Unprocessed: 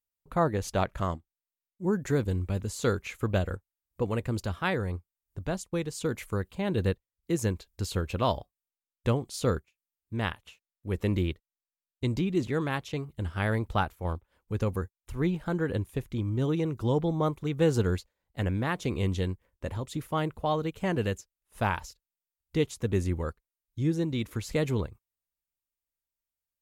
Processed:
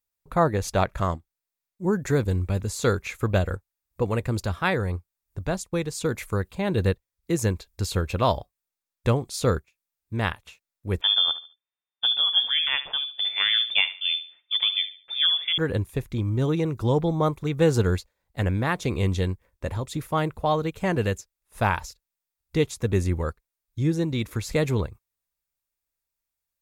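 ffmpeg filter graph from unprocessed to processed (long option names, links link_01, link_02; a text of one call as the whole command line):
ffmpeg -i in.wav -filter_complex "[0:a]asettb=1/sr,asplit=3[link_01][link_02][link_03];[link_01]atrim=end=11.014[link_04];[link_02]atrim=start=11.01:end=15.58,asetpts=PTS-STARTPTS,afade=type=in:duration=0.004:curve=qsin,afade=type=out:start_time=4.566:duration=0.004:curve=qsin,asplit=2[link_05][link_06];[link_06]adelay=72,lowpass=frequency=2800:poles=1,volume=-13dB,asplit=2[link_07][link_08];[link_08]adelay=72,lowpass=frequency=2800:poles=1,volume=0.31,asplit=2[link_09][link_10];[link_10]adelay=72,lowpass=frequency=2800:poles=1,volume=0.31[link_11];[link_05][link_07][link_09][link_11]amix=inputs=4:normalize=0,atrim=end_sample=201537,lowpass=frequency=3100:width_type=q:width=0.5098,lowpass=frequency=3100:width_type=q:width=0.6013,lowpass=frequency=3100:width_type=q:width=0.9,lowpass=frequency=3100:width_type=q:width=2.563,afreqshift=-3600[link_12];[link_03]atrim=start=15.576[link_13];[link_04][link_12]acrossfade=duration=0.004:curve1=hsin:curve2=qsin[link_14];[link_14][link_13]acrossfade=duration=0.004:curve1=qsin:curve2=hsin,equalizer=frequency=260:width=1.1:gain=-3,bandreject=frequency=3000:width=12,volume=5.5dB" out.wav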